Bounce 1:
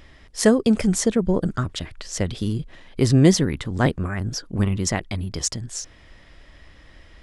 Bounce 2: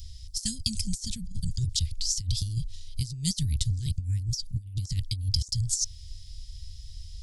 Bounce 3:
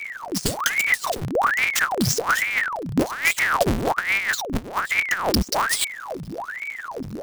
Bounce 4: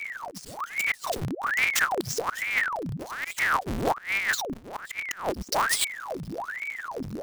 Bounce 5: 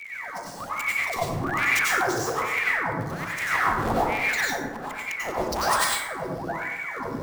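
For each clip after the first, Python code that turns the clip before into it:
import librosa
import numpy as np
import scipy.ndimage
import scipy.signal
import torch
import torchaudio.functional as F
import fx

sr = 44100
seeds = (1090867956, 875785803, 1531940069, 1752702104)

y1 = scipy.signal.sosfilt(scipy.signal.ellip(3, 1.0, 60, [100.0, 4700.0], 'bandstop', fs=sr, output='sos'), x)
y1 = fx.low_shelf(y1, sr, hz=360.0, db=-3.0)
y1 = fx.over_compress(y1, sr, threshold_db=-35.0, ratio=-0.5)
y1 = F.gain(torch.from_numpy(y1), 7.5).numpy()
y2 = fx.halfwave_hold(y1, sr)
y2 = fx.ring_lfo(y2, sr, carrier_hz=1200.0, swing_pct=90, hz=1.2)
y2 = F.gain(torch.from_numpy(y2), 5.0).numpy()
y3 = fx.auto_swell(y2, sr, attack_ms=225.0)
y3 = F.gain(torch.from_numpy(y3), -2.5).numpy()
y4 = fx.rev_plate(y3, sr, seeds[0], rt60_s=1.1, hf_ratio=0.45, predelay_ms=80, drr_db=-7.0)
y4 = F.gain(torch.from_numpy(y4), -5.0).numpy()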